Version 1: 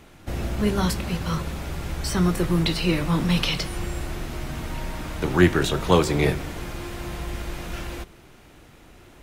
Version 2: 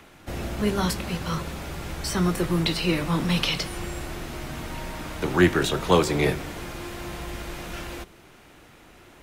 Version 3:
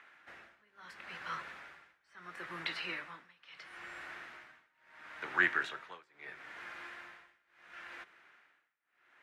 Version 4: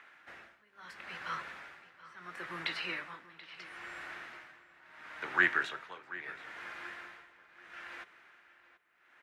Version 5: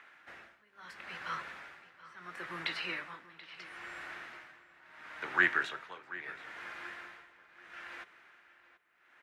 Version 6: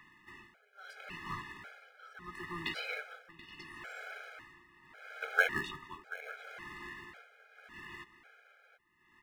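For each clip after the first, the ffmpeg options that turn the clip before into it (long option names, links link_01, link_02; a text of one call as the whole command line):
ffmpeg -i in.wav -filter_complex "[0:a]lowshelf=frequency=140:gain=-6.5,acrossover=split=240|840|2900[link_01][link_02][link_03][link_04];[link_03]acompressor=mode=upward:threshold=-52dB:ratio=2.5[link_05];[link_01][link_02][link_05][link_04]amix=inputs=4:normalize=0" out.wav
ffmpeg -i in.wav -af "bandpass=frequency=1700:width_type=q:width=2.5:csg=0,tremolo=f=0.74:d=0.97,volume=-1dB" out.wav
ffmpeg -i in.wav -filter_complex "[0:a]asplit=2[link_01][link_02];[link_02]adelay=732,lowpass=frequency=4200:poles=1,volume=-16dB,asplit=2[link_03][link_04];[link_04]adelay=732,lowpass=frequency=4200:poles=1,volume=0.35,asplit=2[link_05][link_06];[link_06]adelay=732,lowpass=frequency=4200:poles=1,volume=0.35[link_07];[link_01][link_03][link_05][link_07]amix=inputs=4:normalize=0,volume=2dB" out.wav
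ffmpeg -i in.wav -af anull out.wav
ffmpeg -i in.wav -filter_complex "[0:a]asplit=2[link_01][link_02];[link_02]acrusher=samples=37:mix=1:aa=0.000001,volume=-11dB[link_03];[link_01][link_03]amix=inputs=2:normalize=0,afftfilt=real='re*gt(sin(2*PI*0.91*pts/sr)*(1-2*mod(floor(b*sr/1024/420),2)),0)':imag='im*gt(sin(2*PI*0.91*pts/sr)*(1-2*mod(floor(b*sr/1024/420),2)),0)':win_size=1024:overlap=0.75,volume=1.5dB" out.wav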